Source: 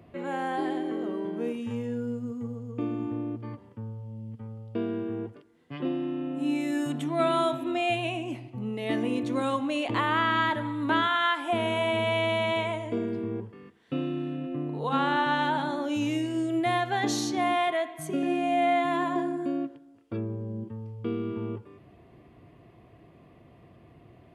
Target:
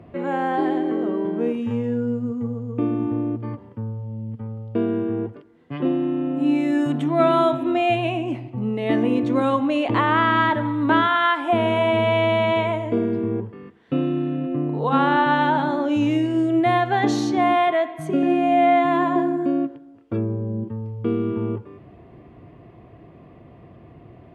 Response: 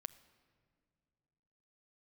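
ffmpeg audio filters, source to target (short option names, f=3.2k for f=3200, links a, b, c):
-af "lowpass=f=1.7k:p=1,volume=8.5dB"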